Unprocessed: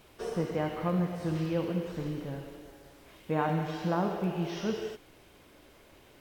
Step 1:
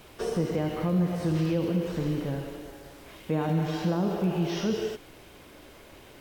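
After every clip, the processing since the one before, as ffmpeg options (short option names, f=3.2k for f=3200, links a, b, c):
-filter_complex "[0:a]acrossover=split=490|3000[a][b][c];[b]acompressor=threshold=-45dB:ratio=2.5[d];[a][d][c]amix=inputs=3:normalize=0,asplit=2[e][f];[f]alimiter=level_in=4dB:limit=-24dB:level=0:latency=1:release=36,volume=-4dB,volume=2dB[g];[e][g]amix=inputs=2:normalize=0"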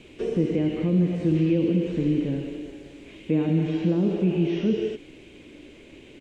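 -filter_complex "[0:a]acrossover=split=2700[a][b];[b]acompressor=threshold=-50dB:ratio=4:attack=1:release=60[c];[a][c]amix=inputs=2:normalize=0,firequalizer=gain_entry='entry(100,0);entry(290,9);entry(730,-8);entry(1300,-10);entry(2400,6);entry(5100,-7);entry(7200,-1);entry(13000,-25)':delay=0.05:min_phase=1"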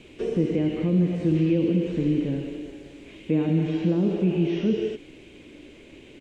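-af anull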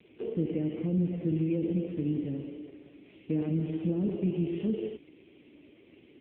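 -af "volume=-6.5dB" -ar 8000 -c:a libopencore_amrnb -b:a 5900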